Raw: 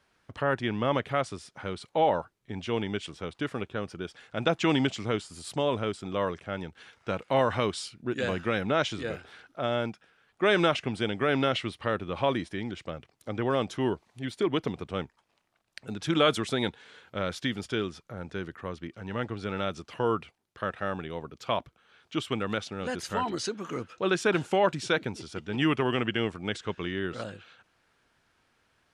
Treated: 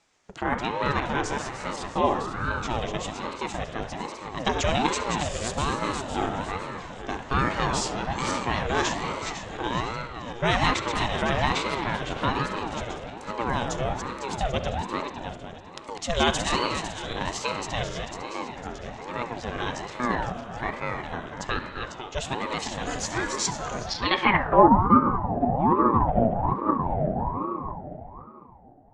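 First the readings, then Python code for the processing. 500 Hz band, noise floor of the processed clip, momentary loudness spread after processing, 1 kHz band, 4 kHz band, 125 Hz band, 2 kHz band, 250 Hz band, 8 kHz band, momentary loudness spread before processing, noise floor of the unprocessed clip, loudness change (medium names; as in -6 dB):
0.0 dB, -43 dBFS, 13 LU, +8.0 dB, +3.0 dB, +4.0 dB, +3.5 dB, +2.5 dB, +10.0 dB, 13 LU, -71 dBFS, +3.5 dB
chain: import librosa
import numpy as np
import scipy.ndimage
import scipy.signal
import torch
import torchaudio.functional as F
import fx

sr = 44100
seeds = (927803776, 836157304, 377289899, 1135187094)

p1 = fx.reverse_delay_fb(x, sr, ms=252, feedback_pct=57, wet_db=-5.5)
p2 = fx.rev_spring(p1, sr, rt60_s=2.3, pass_ms=(33, 56), chirp_ms=50, drr_db=7.5)
p3 = fx.filter_sweep_lowpass(p2, sr, from_hz=6900.0, to_hz=500.0, start_s=23.8, end_s=24.78, q=4.8)
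p4 = p3 + fx.room_flutter(p3, sr, wall_m=11.8, rt60_s=0.22, dry=0)
p5 = fx.ring_lfo(p4, sr, carrier_hz=480.0, swing_pct=55, hz=1.2)
y = p5 * librosa.db_to_amplitude(2.5)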